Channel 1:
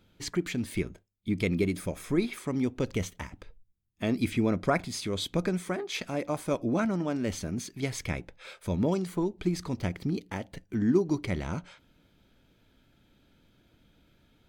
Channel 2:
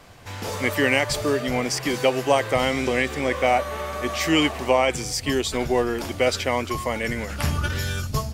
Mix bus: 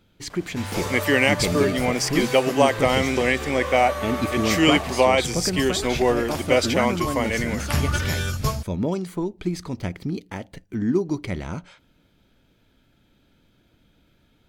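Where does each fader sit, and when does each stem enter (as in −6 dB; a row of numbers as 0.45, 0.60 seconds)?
+2.5, +1.5 decibels; 0.00, 0.30 seconds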